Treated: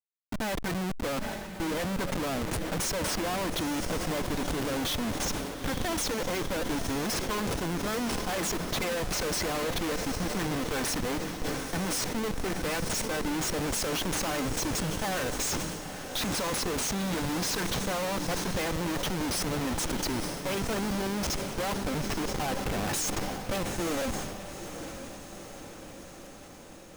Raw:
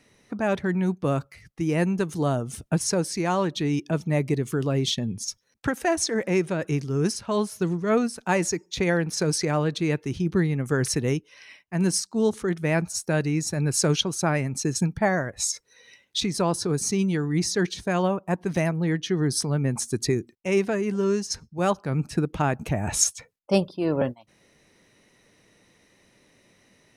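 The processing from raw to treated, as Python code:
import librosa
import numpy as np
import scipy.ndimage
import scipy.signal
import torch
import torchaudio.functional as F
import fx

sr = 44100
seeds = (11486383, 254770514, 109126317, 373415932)

y = fx.law_mismatch(x, sr, coded='A')
y = fx.highpass(y, sr, hz=520.0, slope=6)
y = y + 0.53 * np.pad(y, (int(3.9 * sr / 1000.0), 0))[:len(y)]
y = fx.schmitt(y, sr, flips_db=-35.5)
y = fx.echo_diffused(y, sr, ms=913, feedback_pct=64, wet_db=-10.0)
y = fx.sustainer(y, sr, db_per_s=35.0)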